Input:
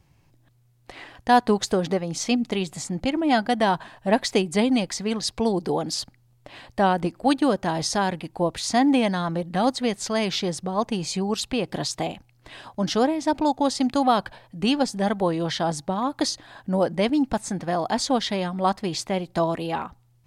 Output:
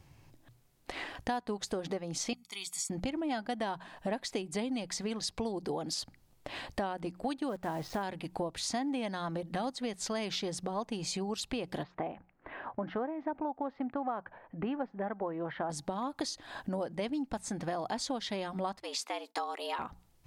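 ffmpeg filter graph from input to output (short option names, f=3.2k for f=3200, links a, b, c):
-filter_complex "[0:a]asettb=1/sr,asplit=3[a][b][c];[a]atrim=end=2.334[d];[b]atrim=start=2.33:end=2.9,asetpts=PTS-STARTPTS,afade=t=in:d=0.004:c=qsin,afade=t=out:st=0.566:d=0.004:c=qsin,aderivative,aecho=1:1:0.9:0.72,atrim=end_sample=25137[e];[c]atrim=start=2.896[f];[d][e]acrossfade=d=0.004:c1=hsin:c2=qsin[g];[g][f]acrossfade=d=0.004:c1=qsin:c2=hsin,asettb=1/sr,asplit=3[h][i][j];[h]atrim=end=7.494[k];[i]atrim=start=7.49:end=8.03,asetpts=PTS-STARTPTS,afade=t=in:d=0.004:c=qsin,afade=t=out:st=0.536:d=0.004:c=qsin,lowpass=2.1k,acrusher=bits=8:dc=4:mix=0:aa=0.000001[l];[j]atrim=start=8.026[m];[k][l]acrossfade=d=0.004:c1=hsin:c2=qsin[n];[n][m]acrossfade=d=0.004:c1=qsin:c2=hsin,asettb=1/sr,asplit=3[o][p][q];[o]atrim=end=11.834[r];[p]atrim=start=11.83:end=15.7,asetpts=PTS-STARTPTS,afade=t=in:d=0.004:c=qsin,afade=t=out:st=3.866:d=0.004:c=qsin,lowpass=f=1.9k:w=0.5412,lowpass=f=1.9k:w=1.3066,lowshelf=f=180:g=-9.5[s];[q]atrim=start=15.696[t];[r][s]acrossfade=d=0.004:c1=hsin:c2=qsin[u];[u][t]acrossfade=d=0.004:c1=qsin:c2=hsin,asettb=1/sr,asplit=3[v][w][x];[v]atrim=end=18.804[y];[w]atrim=start=18.8:end=19.79,asetpts=PTS-STARTPTS,afade=t=in:d=0.004:c=qsin,afade=t=out:st=0.986:d=0.004:c=qsin,highpass=f=840:p=1,agate=range=-33dB:threshold=-52dB:ratio=3:release=100:detection=peak,afreqshift=120[z];[x]atrim=start=19.786[aa];[y][z]acrossfade=d=0.004:c1=hsin:c2=qsin[ab];[ab][aa]acrossfade=d=0.004:c1=qsin:c2=hsin,equalizer=f=180:w=5.5:g=-3.5,bandreject=f=60:t=h:w=6,bandreject=f=120:t=h:w=6,bandreject=f=180:t=h:w=6,acompressor=threshold=-36dB:ratio=5,volume=2dB"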